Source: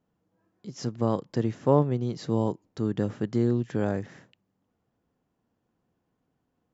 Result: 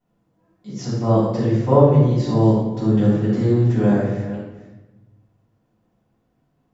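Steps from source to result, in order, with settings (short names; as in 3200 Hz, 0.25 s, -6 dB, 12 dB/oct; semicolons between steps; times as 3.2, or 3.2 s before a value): reverse delay 0.291 s, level -13.5 dB; shoebox room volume 440 m³, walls mixed, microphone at 7.2 m; gain -7.5 dB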